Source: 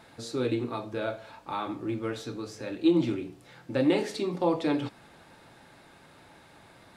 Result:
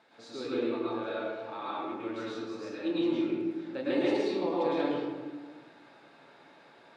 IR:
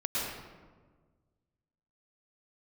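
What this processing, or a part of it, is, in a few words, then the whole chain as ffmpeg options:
supermarket ceiling speaker: -filter_complex "[0:a]highpass=270,lowpass=5.2k[a];[1:a]atrim=start_sample=2205[b];[a][b]afir=irnorm=-1:irlink=0,volume=-8dB"

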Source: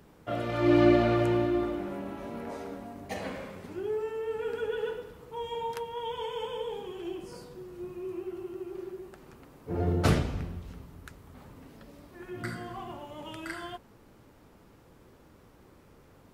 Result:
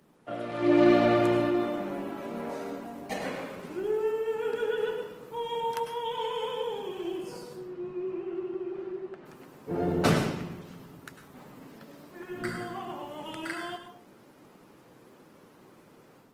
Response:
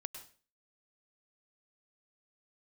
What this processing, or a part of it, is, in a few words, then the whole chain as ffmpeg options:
far-field microphone of a smart speaker: -filter_complex "[0:a]asettb=1/sr,asplit=3[a][b][c];[a]atrim=end=7.574[d];[b]atrim=start=7.57:end=9.26,asetpts=PTS-STARTPTS,afade=t=in:d=0.004:c=qsin,afade=t=out:st=1.686:d=0.004:c=qsin,lowpass=3.1k[e];[c]atrim=start=9.256[f];[d][e]acrossfade=d=0.004:c1=hsin:c2=qsin[g];[g][f]acrossfade=d=0.004:c1=qsin:c2=hsin[h];[1:a]atrim=start_sample=2205[i];[h][i]afir=irnorm=-1:irlink=0,highpass=f=140:w=0.5412,highpass=f=140:w=1.3066,dynaudnorm=f=490:g=3:m=6dB" -ar 48000 -c:a libopus -b:a 20k

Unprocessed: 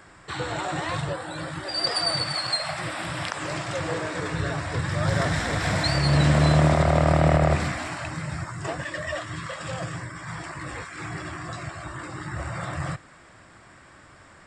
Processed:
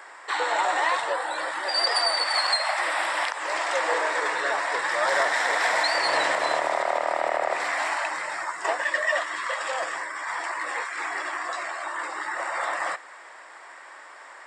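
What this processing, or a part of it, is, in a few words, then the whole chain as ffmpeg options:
laptop speaker: -af "highpass=f=440:w=0.5412,highpass=f=440:w=1.3066,equalizer=f=920:t=o:w=0.52:g=8,equalizer=f=1.9k:t=o:w=0.38:g=6.5,alimiter=limit=-15.5dB:level=0:latency=1:release=313,volume=3dB"

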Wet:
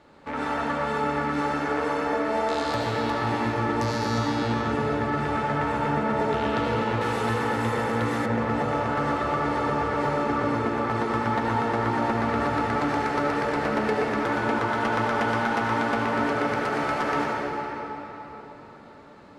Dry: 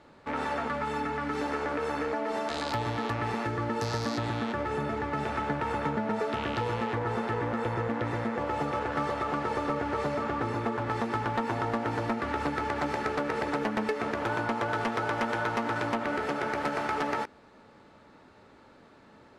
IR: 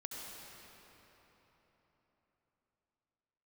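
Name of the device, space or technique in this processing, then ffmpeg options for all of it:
cathedral: -filter_complex "[1:a]atrim=start_sample=2205[a];[0:a][a]afir=irnorm=-1:irlink=0,asettb=1/sr,asplit=3[b][c][d];[b]atrim=end=7.014[e];[c]atrim=start=7.01:end=8.26,asetpts=PTS-STARTPTS,afade=t=in:d=0.004:c=qsin,afade=t=out:st=1.246:d=0.004:c=qsin,aemphasis=mode=production:type=75fm[f];[d]atrim=start=8.256[g];[e][f]acrossfade=d=0.004:c1=hsin:c2=qsin[h];[h][g]acrossfade=d=0.004:c1=qsin:c2=hsin,volume=6dB"

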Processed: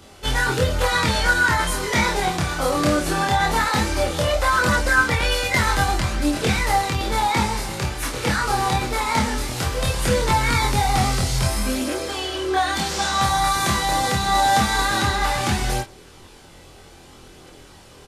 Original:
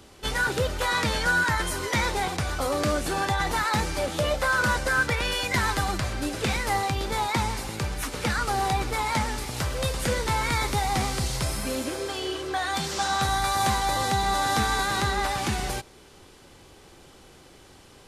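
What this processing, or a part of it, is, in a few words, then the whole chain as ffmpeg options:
double-tracked vocal: -filter_complex "[0:a]asplit=2[a][b];[b]adelay=24,volume=-4.5dB[c];[a][c]amix=inputs=2:normalize=0,flanger=delay=22.5:depth=7.6:speed=0.18,volume=7dB"

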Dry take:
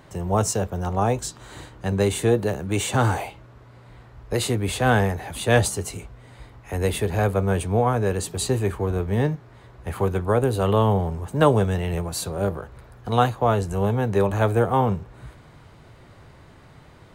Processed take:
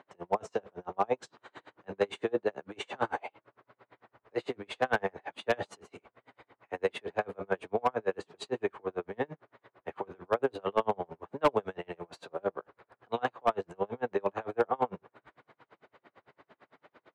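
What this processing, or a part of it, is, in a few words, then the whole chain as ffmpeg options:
helicopter radio: -af "highpass=380,lowpass=2.6k,aeval=exprs='val(0)*pow(10,-37*(0.5-0.5*cos(2*PI*8.9*n/s))/20)':c=same,asoftclip=type=hard:threshold=-17dB"

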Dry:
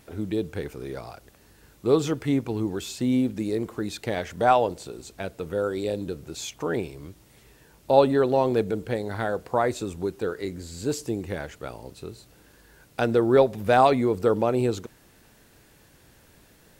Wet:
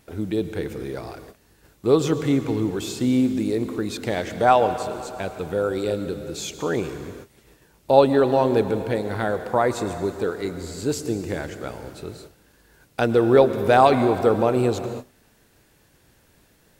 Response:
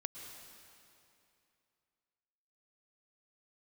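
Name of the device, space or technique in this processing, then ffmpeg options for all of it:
keyed gated reverb: -filter_complex "[0:a]asplit=3[a][b][c];[1:a]atrim=start_sample=2205[d];[b][d]afir=irnorm=-1:irlink=0[e];[c]apad=whole_len=740748[f];[e][f]sidechaingate=range=-33dB:threshold=-51dB:ratio=16:detection=peak,volume=3dB[g];[a][g]amix=inputs=2:normalize=0,volume=-3dB"

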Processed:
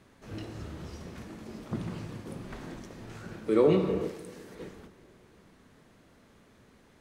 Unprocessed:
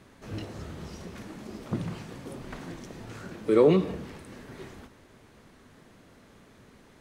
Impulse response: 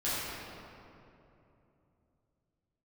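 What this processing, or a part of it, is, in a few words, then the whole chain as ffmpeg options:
keyed gated reverb: -filter_complex "[0:a]asettb=1/sr,asplit=3[a][b][c];[a]atrim=end=4.014[d];[b]atrim=start=4.01:end=4.55,asetpts=PTS-STARTPTS,afade=t=in:d=0.004:c=qsin,afade=t=out:st=0.536:d=0.004:c=qsin,bass=f=250:g=-8,treble=f=4k:g=7[e];[c]atrim=start=4.546[f];[d][e]acrossfade=d=0.004:c1=hsin:c2=qsin[g];[g][f]acrossfade=d=0.004:c1=qsin:c2=hsin,asplit=3[h][i][j];[1:a]atrim=start_sample=2205[k];[i][k]afir=irnorm=-1:irlink=0[l];[j]apad=whole_len=309076[m];[l][m]sidechaingate=range=-11dB:threshold=-42dB:ratio=16:detection=peak,volume=-11.5dB[n];[h][n]amix=inputs=2:normalize=0,volume=-5dB"

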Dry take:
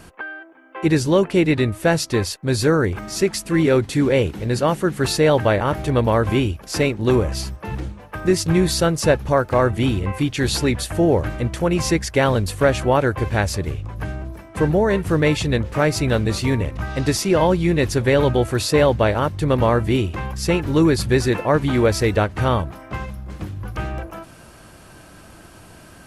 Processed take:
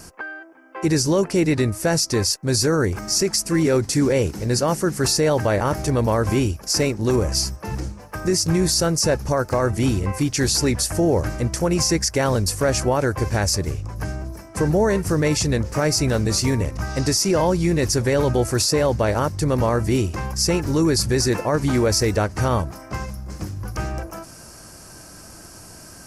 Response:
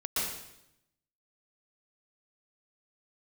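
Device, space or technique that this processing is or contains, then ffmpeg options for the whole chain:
over-bright horn tweeter: -af "highshelf=f=4.3k:t=q:w=3:g=7,alimiter=limit=-10.5dB:level=0:latency=1:release=30"

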